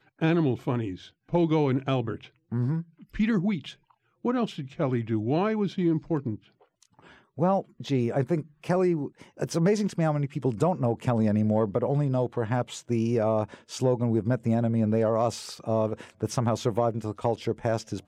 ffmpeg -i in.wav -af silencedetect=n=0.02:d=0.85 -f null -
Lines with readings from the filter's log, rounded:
silence_start: 6.36
silence_end: 7.38 | silence_duration: 1.03